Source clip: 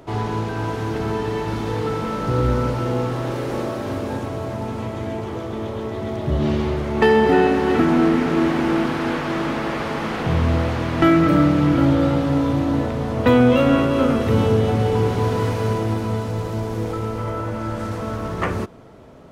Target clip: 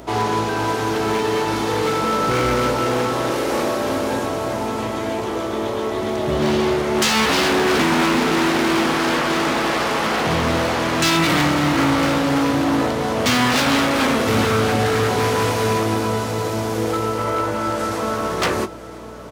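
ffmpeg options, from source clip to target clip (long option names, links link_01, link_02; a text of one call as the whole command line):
ffmpeg -i in.wav -filter_complex "[0:a]acrossover=split=250|5100[link_01][link_02][link_03];[link_02]aeval=exprs='0.0891*(abs(mod(val(0)/0.0891+3,4)-2)-1)':channel_layout=same[link_04];[link_01][link_04][link_03]amix=inputs=3:normalize=0,aeval=exprs='val(0)+0.0158*(sin(2*PI*60*n/s)+sin(2*PI*2*60*n/s)/2+sin(2*PI*3*60*n/s)/3+sin(2*PI*4*60*n/s)/4+sin(2*PI*5*60*n/s)/5)':channel_layout=same,highpass=frequency=100:poles=1,bass=frequency=250:gain=-10,treble=frequency=4000:gain=5,asplit=2[link_05][link_06];[link_06]adelay=19,volume=-12dB[link_07];[link_05][link_07]amix=inputs=2:normalize=0,aecho=1:1:1006|2012|3018|4024:0.133|0.0693|0.0361|0.0188,volume=7dB" out.wav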